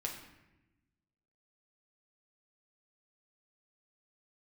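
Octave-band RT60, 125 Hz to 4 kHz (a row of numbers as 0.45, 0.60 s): 1.6, 1.5, 1.1, 0.90, 1.0, 0.70 s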